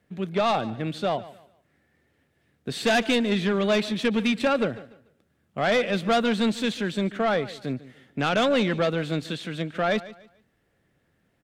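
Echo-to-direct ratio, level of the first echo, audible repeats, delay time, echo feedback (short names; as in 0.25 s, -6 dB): -17.0 dB, -17.5 dB, 2, 0.146 s, 29%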